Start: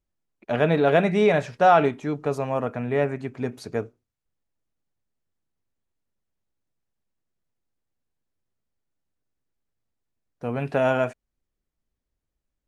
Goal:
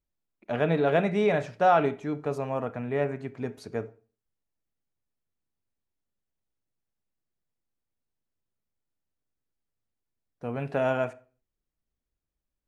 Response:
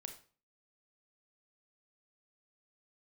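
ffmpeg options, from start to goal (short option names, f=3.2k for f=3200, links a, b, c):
-filter_complex "[0:a]asplit=2[a][b];[1:a]atrim=start_sample=2205,highshelf=f=5.1k:g=-12[c];[b][c]afir=irnorm=-1:irlink=0,volume=-1dB[d];[a][d]amix=inputs=2:normalize=0,volume=-8dB"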